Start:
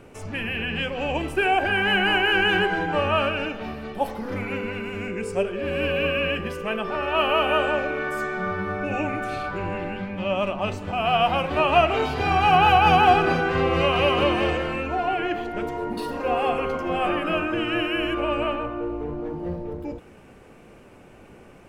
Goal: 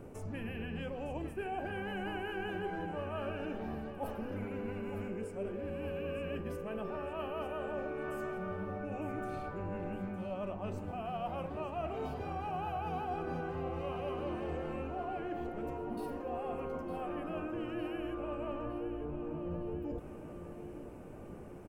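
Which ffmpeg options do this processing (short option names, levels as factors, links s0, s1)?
-af "equalizer=f=3200:w=0.42:g=-14,areverse,acompressor=threshold=0.0141:ratio=6,areverse,aecho=1:1:909|1818|2727|3636|4545|5454:0.282|0.149|0.0792|0.042|0.0222|0.0118"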